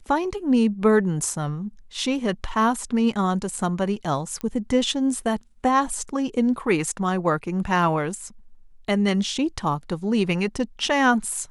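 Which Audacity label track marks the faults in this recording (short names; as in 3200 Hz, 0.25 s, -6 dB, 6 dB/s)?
4.410000	4.410000	pop -17 dBFS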